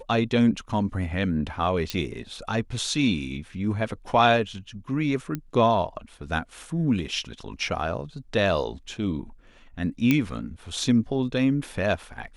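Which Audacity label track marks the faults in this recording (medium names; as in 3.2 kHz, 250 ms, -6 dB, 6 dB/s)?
1.900000	1.900000	pop -13 dBFS
5.350000	5.350000	pop -16 dBFS
10.110000	10.110000	pop -8 dBFS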